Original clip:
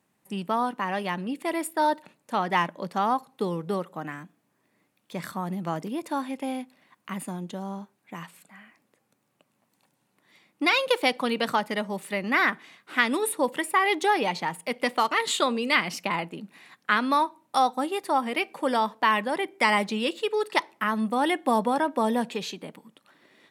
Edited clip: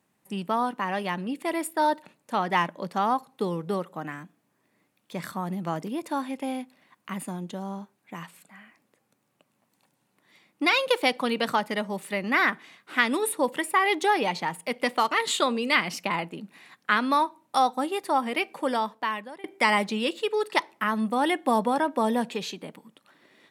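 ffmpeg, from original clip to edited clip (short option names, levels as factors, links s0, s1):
-filter_complex "[0:a]asplit=2[s0][s1];[s0]atrim=end=19.44,asetpts=PTS-STARTPTS,afade=t=out:st=18.56:d=0.88:silence=0.0749894[s2];[s1]atrim=start=19.44,asetpts=PTS-STARTPTS,afade=t=in:d=0.004:c=hsin:silence=0.0749894[s3];[s2][s3]concat=n=2:v=0:a=1"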